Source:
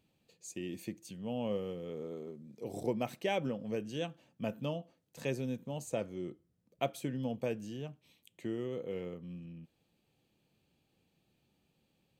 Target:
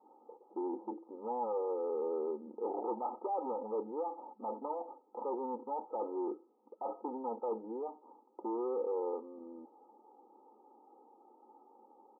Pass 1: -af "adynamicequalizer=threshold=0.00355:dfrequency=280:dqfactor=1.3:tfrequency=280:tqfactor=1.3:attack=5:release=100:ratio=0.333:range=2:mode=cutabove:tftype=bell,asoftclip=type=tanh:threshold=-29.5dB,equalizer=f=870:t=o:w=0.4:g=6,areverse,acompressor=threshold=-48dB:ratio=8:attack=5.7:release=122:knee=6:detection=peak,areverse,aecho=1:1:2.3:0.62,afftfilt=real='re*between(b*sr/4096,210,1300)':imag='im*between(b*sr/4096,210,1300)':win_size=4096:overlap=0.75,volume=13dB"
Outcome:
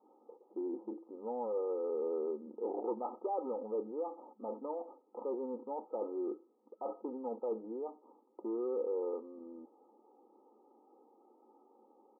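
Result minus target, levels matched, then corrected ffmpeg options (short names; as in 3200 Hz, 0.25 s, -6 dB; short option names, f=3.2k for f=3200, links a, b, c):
1000 Hz band -4.5 dB; soft clip: distortion -6 dB
-af "adynamicequalizer=threshold=0.00355:dfrequency=280:dqfactor=1.3:tfrequency=280:tqfactor=1.3:attack=5:release=100:ratio=0.333:range=2:mode=cutabove:tftype=bell,asoftclip=type=tanh:threshold=-36dB,equalizer=f=870:t=o:w=0.4:g=14,areverse,acompressor=threshold=-48dB:ratio=8:attack=5.7:release=122:knee=6:detection=peak,areverse,aecho=1:1:2.3:0.62,afftfilt=real='re*between(b*sr/4096,210,1300)':imag='im*between(b*sr/4096,210,1300)':win_size=4096:overlap=0.75,volume=13dB"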